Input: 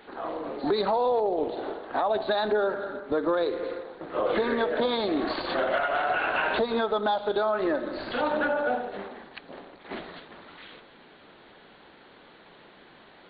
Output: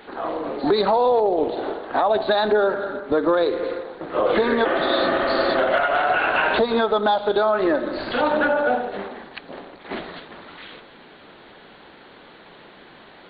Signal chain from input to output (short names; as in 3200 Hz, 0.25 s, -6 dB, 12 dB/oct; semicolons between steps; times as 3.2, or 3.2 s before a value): spectral repair 4.67–5.51, 210–3400 Hz after; gain +6.5 dB